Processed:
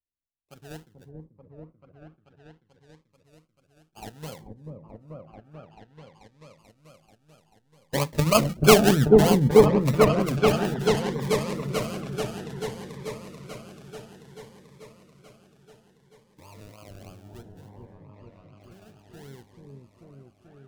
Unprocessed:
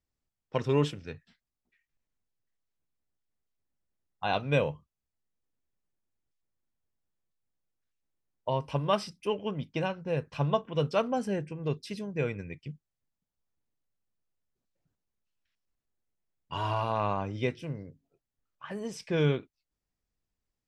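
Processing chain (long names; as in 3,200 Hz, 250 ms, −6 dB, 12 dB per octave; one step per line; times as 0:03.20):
source passing by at 0:08.75, 22 m/s, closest 2.8 metres
high-shelf EQ 7,600 Hz −8.5 dB
in parallel at +1 dB: output level in coarse steps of 15 dB
on the sum: sample-and-hold swept by an LFO 33×, swing 60% 3.2 Hz
on a send: echo whose low-pass opens from repeat to repeat 437 ms, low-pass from 400 Hz, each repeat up 1 octave, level 0 dB
on the sum: boost into a limiter +17.5 dB
phaser whose notches keep moving one way rising 0.6 Hz
level −1 dB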